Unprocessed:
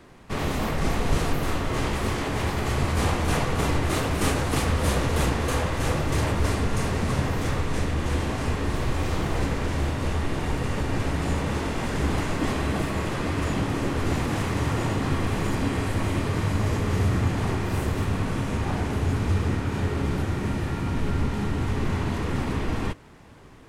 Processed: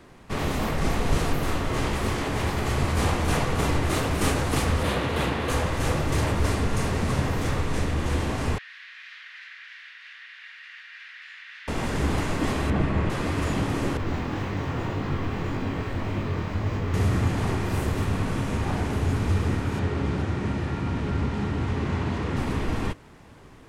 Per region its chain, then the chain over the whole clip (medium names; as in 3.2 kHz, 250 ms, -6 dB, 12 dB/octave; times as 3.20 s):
4.83–5.50 s: high-pass 120 Hz 6 dB/octave + resonant high shelf 4.6 kHz -6.5 dB, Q 1.5
8.58–11.68 s: elliptic high-pass 1.7 kHz, stop band 80 dB + distance through air 310 m
12.70–13.10 s: low-pass 8.5 kHz + tone controls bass +5 dB, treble -13 dB
13.97–16.94 s: distance through air 89 m + chorus 1.8 Hz, delay 20 ms, depth 4.2 ms + decimation joined by straight lines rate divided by 2×
19.79–22.37 s: high-pass 49 Hz + distance through air 66 m
whole clip: none